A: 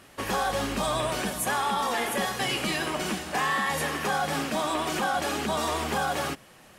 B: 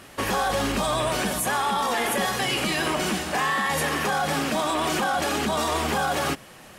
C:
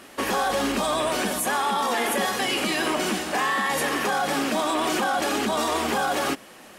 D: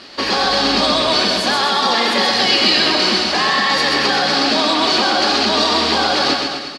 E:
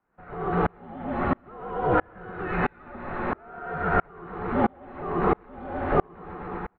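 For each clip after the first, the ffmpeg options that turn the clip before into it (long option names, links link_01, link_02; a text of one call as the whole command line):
ffmpeg -i in.wav -af "alimiter=limit=-22.5dB:level=0:latency=1:release=23,acontrast=61" out.wav
ffmpeg -i in.wav -af "lowshelf=frequency=180:width_type=q:width=1.5:gain=-8.5" out.wav
ffmpeg -i in.wav -af "lowpass=frequency=4500:width_type=q:width=7.6,aecho=1:1:130|247|352.3|447.1|532.4:0.631|0.398|0.251|0.158|0.1,volume=4.5dB" out.wav
ffmpeg -i in.wav -af "highpass=frequency=400:width_type=q:width=0.5412,highpass=frequency=400:width_type=q:width=1.307,lowpass=frequency=2000:width_type=q:width=0.5176,lowpass=frequency=2000:width_type=q:width=0.7071,lowpass=frequency=2000:width_type=q:width=1.932,afreqshift=-380,aeval=exprs='val(0)*pow(10,-36*if(lt(mod(-1.5*n/s,1),2*abs(-1.5)/1000),1-mod(-1.5*n/s,1)/(2*abs(-1.5)/1000),(mod(-1.5*n/s,1)-2*abs(-1.5)/1000)/(1-2*abs(-1.5)/1000))/20)':channel_layout=same,volume=1dB" out.wav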